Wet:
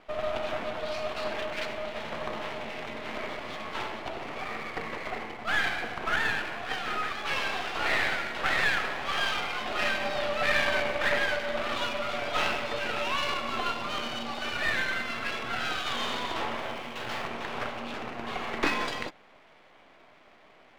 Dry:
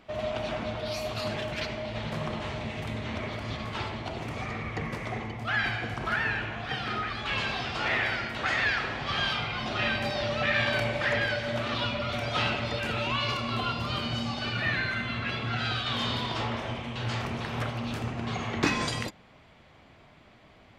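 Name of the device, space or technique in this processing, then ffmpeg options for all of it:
crystal radio: -filter_complex "[0:a]highpass=350,lowpass=3100,aeval=exprs='if(lt(val(0),0),0.251*val(0),val(0))':c=same,asettb=1/sr,asplit=3[s0][s1][s2];[s0]atrim=end=16.594[s3];[s1]atrim=start=16.59:end=17.28,asetpts=PTS-STARTPTS,afade=t=in:d=0.004:c=qsin,afade=t=out:st=0.686:d=0.004:c=qsin,highshelf=f=11000:g=6.5[s4];[s2]atrim=start=17.276[s5];[s3][s4]acrossfade=d=0.004:c1=hsin:c2=qsin[s6];[s6][s5]acrossfade=d=0.004:c1=qsin:c2=hsin,volume=1.78"

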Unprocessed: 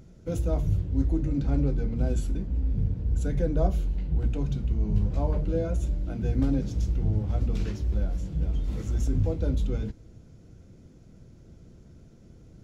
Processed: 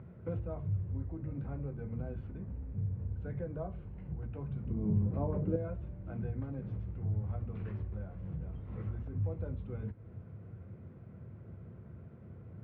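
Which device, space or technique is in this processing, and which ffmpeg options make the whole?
bass amplifier: -filter_complex "[0:a]acompressor=threshold=0.0126:ratio=3,highpass=f=72:w=0.5412,highpass=f=72:w=1.3066,equalizer=f=100:t=q:w=4:g=6,equalizer=f=290:t=q:w=4:g=-8,equalizer=f=1100:t=q:w=4:g=5,lowpass=f=2200:w=0.5412,lowpass=f=2200:w=1.3066,asettb=1/sr,asplit=3[s0][s1][s2];[s0]atrim=end=4.664[s3];[s1]atrim=start=4.66:end=5.56,asetpts=PTS-STARTPTS,afade=t=in:d=0.004:c=qsin,afade=t=out:st=0.896:d=0.004:c=qsin,equalizer=f=270:w=0.65:g=13[s4];[s2]atrim=start=5.556[s5];[s3][s4]acrossfade=d=0.004:c1=hsin:c2=qsin[s6];[s6][s5]acrossfade=d=0.004:c1=qsin:c2=hsin,volume=1.19"

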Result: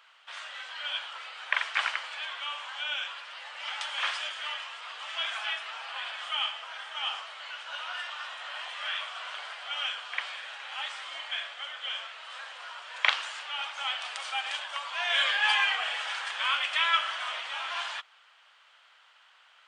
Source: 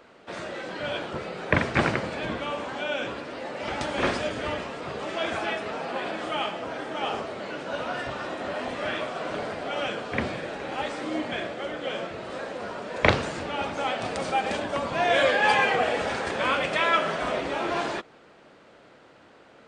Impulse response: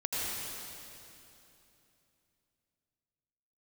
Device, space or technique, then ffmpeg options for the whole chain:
headphones lying on a table: -af "highpass=f=1000:w=0.5412,highpass=f=1000:w=1.3066,equalizer=f=3100:t=o:w=0.38:g=9,volume=0.708"

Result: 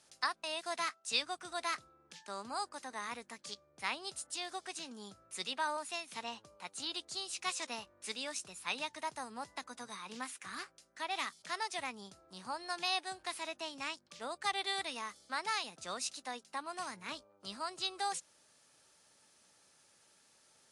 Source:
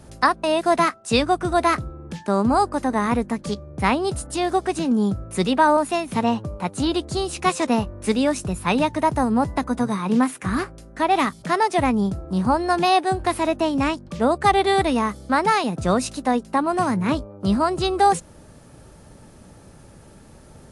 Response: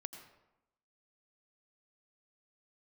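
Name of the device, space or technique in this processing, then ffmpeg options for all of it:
piezo pickup straight into a mixer: -af "lowpass=5800,aderivative,volume=0.794"

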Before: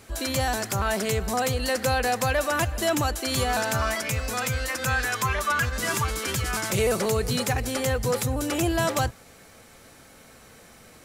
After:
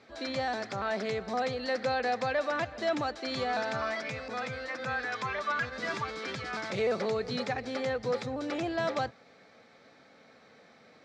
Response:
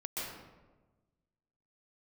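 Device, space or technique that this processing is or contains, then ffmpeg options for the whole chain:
kitchen radio: -filter_complex "[0:a]highpass=220,equalizer=f=350:t=q:w=4:g=-5,equalizer=f=1000:t=q:w=4:g=-5,equalizer=f=1500:t=q:w=4:g=-3,equalizer=f=2900:t=q:w=4:g=-9,lowpass=f=4300:w=0.5412,lowpass=f=4300:w=1.3066,asettb=1/sr,asplit=3[s0][s1][s2];[s0]atrim=end=4.284[s3];[s1]atrim=start=4.28:end=5.12,asetpts=PTS-STARTPTS,afade=t=in:d=0.004:c=qsin,afade=t=out:st=0.836:d=0.004:c=qsin,adynamicequalizer=threshold=0.0112:dfrequency=2000:dqfactor=0.7:tfrequency=2000:tqfactor=0.7:attack=5:release=100:ratio=0.375:range=2:mode=cutabove:tftype=highshelf[s4];[s2]atrim=start=5.116[s5];[s3][s4]acrossfade=d=0.004:c1=hsin:c2=qsin[s6];[s6][s5]acrossfade=d=0.004:c1=qsin:c2=hsin,volume=0.668"

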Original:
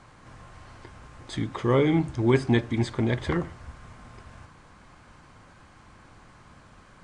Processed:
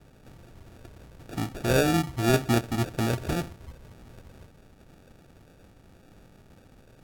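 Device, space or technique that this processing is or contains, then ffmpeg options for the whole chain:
crushed at another speed: -af "asetrate=55125,aresample=44100,acrusher=samples=34:mix=1:aa=0.000001,asetrate=35280,aresample=44100,volume=0.841"

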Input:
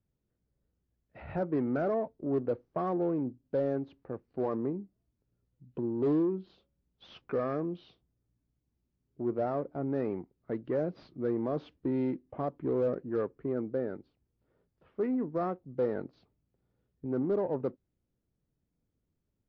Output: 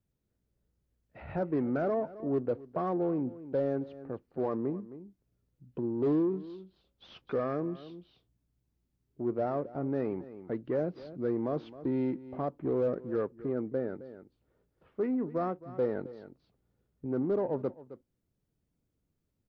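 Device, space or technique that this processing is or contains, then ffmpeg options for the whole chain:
ducked delay: -filter_complex "[0:a]asplit=3[s0][s1][s2];[s1]adelay=265,volume=0.501[s3];[s2]apad=whole_len=871143[s4];[s3][s4]sidechaincompress=threshold=0.00794:ratio=8:attack=12:release=521[s5];[s0][s5]amix=inputs=2:normalize=0"

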